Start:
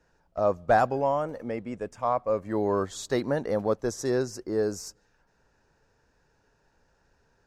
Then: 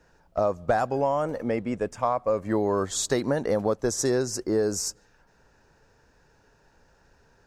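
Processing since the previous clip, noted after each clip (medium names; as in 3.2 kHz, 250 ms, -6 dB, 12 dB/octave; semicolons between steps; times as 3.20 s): dynamic bell 8.1 kHz, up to +6 dB, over -53 dBFS, Q 1; compression 6:1, threshold -27 dBFS, peak gain reduction 10.5 dB; trim +6.5 dB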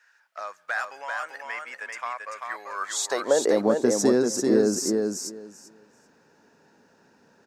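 high-pass sweep 1.7 kHz -> 220 Hz, 2.72–3.69 s; on a send: feedback delay 390 ms, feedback 16%, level -4 dB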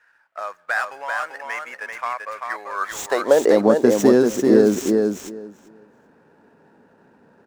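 median filter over 9 samples; tape noise reduction on one side only decoder only; trim +6.5 dB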